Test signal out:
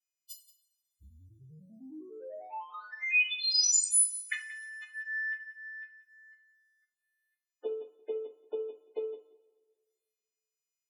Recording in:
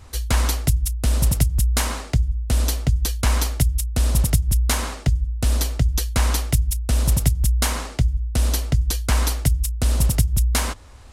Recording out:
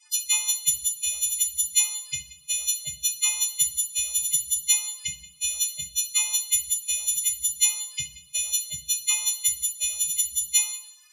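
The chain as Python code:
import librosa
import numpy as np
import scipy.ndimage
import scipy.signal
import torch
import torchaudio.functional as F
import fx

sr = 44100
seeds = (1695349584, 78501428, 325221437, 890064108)

y = fx.freq_snap(x, sr, grid_st=3)
y = fx.peak_eq(y, sr, hz=5600.0, db=-12.5, octaves=1.3)
y = fx.transient(y, sr, attack_db=10, sustain_db=-8)
y = fx.env_flanger(y, sr, rest_ms=4.4, full_db=-21.0)
y = fx.bandpass_q(y, sr, hz=5200.0, q=1.4)
y = fx.spec_topn(y, sr, count=32)
y = y + 10.0 ** (-17.5 / 20.0) * np.pad(y, (int(179 * sr / 1000.0), 0))[:len(y)]
y = fx.rev_double_slope(y, sr, seeds[0], early_s=0.38, late_s=1.7, knee_db=-19, drr_db=4.0)
y = y * librosa.db_to_amplitude(4.5)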